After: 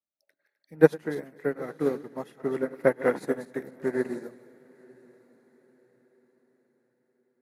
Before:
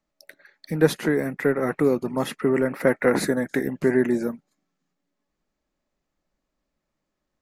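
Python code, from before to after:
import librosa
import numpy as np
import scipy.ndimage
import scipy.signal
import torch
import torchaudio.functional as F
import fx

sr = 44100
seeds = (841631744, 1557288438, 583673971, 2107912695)

p1 = fx.reverse_delay_fb(x, sr, ms=128, feedback_pct=55, wet_db=-9.0)
p2 = scipy.signal.sosfilt(scipy.signal.butter(2, 70.0, 'highpass', fs=sr, output='sos'), p1)
p3 = fx.peak_eq(p2, sr, hz=670.0, db=4.0, octaves=1.7)
p4 = p3 + fx.echo_diffused(p3, sr, ms=916, feedback_pct=41, wet_db=-11.0, dry=0)
y = fx.upward_expand(p4, sr, threshold_db=-26.0, expansion=2.5)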